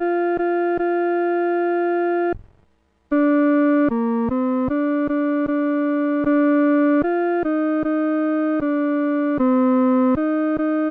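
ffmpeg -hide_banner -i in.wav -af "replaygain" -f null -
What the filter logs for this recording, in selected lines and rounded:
track_gain = +1.3 dB
track_peak = 0.218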